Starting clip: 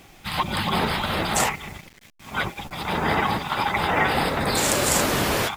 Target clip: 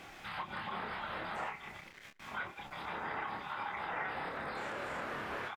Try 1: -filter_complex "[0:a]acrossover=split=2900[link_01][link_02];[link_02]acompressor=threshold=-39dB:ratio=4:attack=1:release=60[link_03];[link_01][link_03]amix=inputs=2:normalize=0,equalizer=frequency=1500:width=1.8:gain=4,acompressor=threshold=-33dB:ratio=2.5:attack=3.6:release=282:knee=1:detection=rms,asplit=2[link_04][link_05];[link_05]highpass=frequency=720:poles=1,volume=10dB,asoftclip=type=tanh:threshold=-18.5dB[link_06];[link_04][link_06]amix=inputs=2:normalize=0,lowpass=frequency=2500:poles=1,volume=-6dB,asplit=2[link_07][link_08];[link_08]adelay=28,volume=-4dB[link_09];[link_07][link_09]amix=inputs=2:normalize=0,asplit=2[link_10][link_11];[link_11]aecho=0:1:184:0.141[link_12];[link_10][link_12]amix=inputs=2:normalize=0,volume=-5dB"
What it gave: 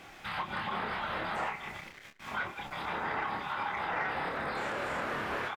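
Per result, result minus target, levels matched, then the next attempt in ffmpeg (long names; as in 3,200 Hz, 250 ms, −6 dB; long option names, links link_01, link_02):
downward compressor: peak gain reduction −6 dB; echo-to-direct +6 dB
-filter_complex "[0:a]acrossover=split=2900[link_01][link_02];[link_02]acompressor=threshold=-39dB:ratio=4:attack=1:release=60[link_03];[link_01][link_03]amix=inputs=2:normalize=0,equalizer=frequency=1500:width=1.8:gain=4,acompressor=threshold=-43dB:ratio=2.5:attack=3.6:release=282:knee=1:detection=rms,asplit=2[link_04][link_05];[link_05]highpass=frequency=720:poles=1,volume=10dB,asoftclip=type=tanh:threshold=-18.5dB[link_06];[link_04][link_06]amix=inputs=2:normalize=0,lowpass=frequency=2500:poles=1,volume=-6dB,asplit=2[link_07][link_08];[link_08]adelay=28,volume=-4dB[link_09];[link_07][link_09]amix=inputs=2:normalize=0,asplit=2[link_10][link_11];[link_11]aecho=0:1:184:0.141[link_12];[link_10][link_12]amix=inputs=2:normalize=0,volume=-5dB"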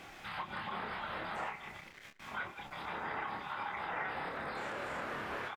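echo-to-direct +6 dB
-filter_complex "[0:a]acrossover=split=2900[link_01][link_02];[link_02]acompressor=threshold=-39dB:ratio=4:attack=1:release=60[link_03];[link_01][link_03]amix=inputs=2:normalize=0,equalizer=frequency=1500:width=1.8:gain=4,acompressor=threshold=-43dB:ratio=2.5:attack=3.6:release=282:knee=1:detection=rms,asplit=2[link_04][link_05];[link_05]highpass=frequency=720:poles=1,volume=10dB,asoftclip=type=tanh:threshold=-18.5dB[link_06];[link_04][link_06]amix=inputs=2:normalize=0,lowpass=frequency=2500:poles=1,volume=-6dB,asplit=2[link_07][link_08];[link_08]adelay=28,volume=-4dB[link_09];[link_07][link_09]amix=inputs=2:normalize=0,asplit=2[link_10][link_11];[link_11]aecho=0:1:184:0.0708[link_12];[link_10][link_12]amix=inputs=2:normalize=0,volume=-5dB"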